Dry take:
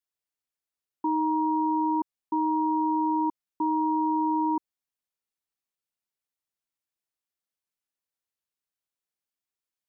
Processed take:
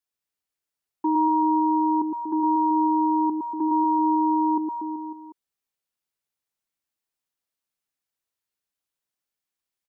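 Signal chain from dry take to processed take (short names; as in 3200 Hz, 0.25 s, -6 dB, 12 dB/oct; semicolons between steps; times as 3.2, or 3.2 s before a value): dynamic EQ 400 Hz, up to +5 dB, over -40 dBFS, Q 1.1; reverse bouncing-ball echo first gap 0.11 s, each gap 1.15×, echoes 5; gain +1 dB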